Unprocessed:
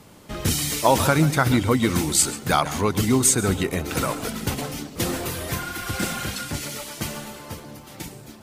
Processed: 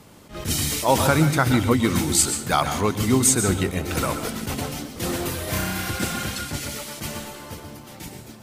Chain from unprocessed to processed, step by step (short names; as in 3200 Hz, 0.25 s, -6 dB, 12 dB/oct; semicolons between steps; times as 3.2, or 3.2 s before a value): 5.44–5.9 flutter echo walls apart 5.5 m, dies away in 0.76 s; on a send at -10 dB: reverb RT60 0.30 s, pre-delay 0.119 s; on the sum: attack slew limiter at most 180 dB/s